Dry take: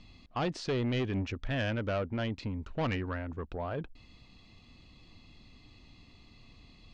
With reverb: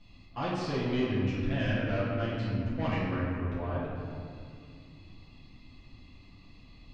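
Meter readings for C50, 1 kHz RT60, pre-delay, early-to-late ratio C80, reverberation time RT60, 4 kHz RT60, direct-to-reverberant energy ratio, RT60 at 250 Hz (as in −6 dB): −1.5 dB, 2.3 s, 6 ms, 0.5 dB, 2.4 s, 1.3 s, −11.0 dB, 3.4 s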